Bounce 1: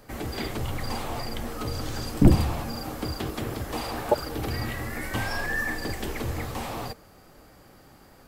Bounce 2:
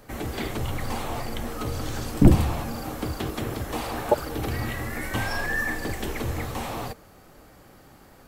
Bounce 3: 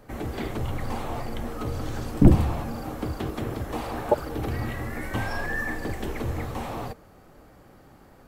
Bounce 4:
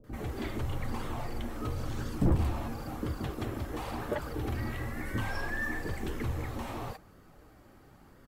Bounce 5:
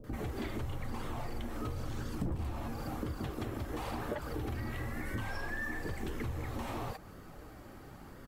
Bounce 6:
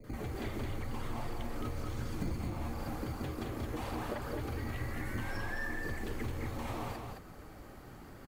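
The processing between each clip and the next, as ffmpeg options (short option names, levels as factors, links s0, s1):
-af "bandreject=f=4800:w=14,volume=1.19"
-af "highshelf=f=2100:g=-8"
-filter_complex "[0:a]asoftclip=type=tanh:threshold=0.158,flanger=delay=0.6:depth=2.7:regen=-52:speed=0.98:shape=sinusoidal,acrossover=split=610[s0][s1];[s1]adelay=40[s2];[s0][s2]amix=inputs=2:normalize=0"
-af "acompressor=threshold=0.00794:ratio=4,volume=2"
-filter_complex "[0:a]acrossover=split=230|1300[s0][s1][s2];[s0]acrusher=samples=20:mix=1:aa=0.000001[s3];[s3][s1][s2]amix=inputs=3:normalize=0,aecho=1:1:216:0.631,volume=0.841"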